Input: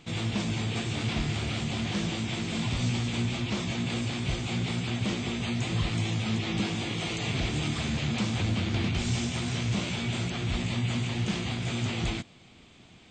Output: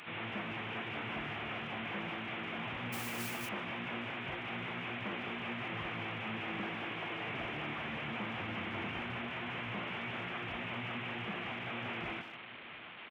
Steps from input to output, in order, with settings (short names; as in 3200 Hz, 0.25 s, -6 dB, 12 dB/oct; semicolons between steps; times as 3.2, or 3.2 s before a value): delta modulation 16 kbps, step -39.5 dBFS; on a send: echo 0.691 s -18.5 dB; 2.92–3.49 on the sum: modulation noise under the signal 18 dB; HPF 1100 Hz 6 dB/oct; speakerphone echo 0.15 s, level -10 dB; gain +1 dB